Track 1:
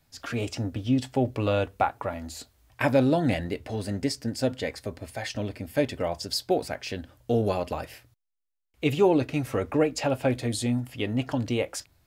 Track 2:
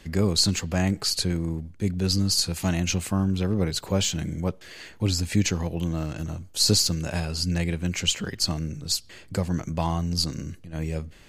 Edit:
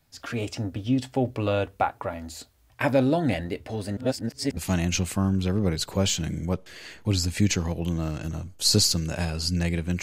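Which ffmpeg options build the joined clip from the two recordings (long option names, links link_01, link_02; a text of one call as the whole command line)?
ffmpeg -i cue0.wav -i cue1.wav -filter_complex "[0:a]apad=whole_dur=10.02,atrim=end=10.02,asplit=2[link_01][link_02];[link_01]atrim=end=3.972[link_03];[link_02]atrim=start=3.968:end=4.572,asetpts=PTS-STARTPTS,areverse[link_04];[1:a]atrim=start=2.518:end=7.97[link_05];[link_03][link_04]acrossfade=duration=0.004:curve1=hsin:curve2=hsin[link_06];[link_06][link_05]acrossfade=duration=0.004:curve1=hsin:curve2=hsin" out.wav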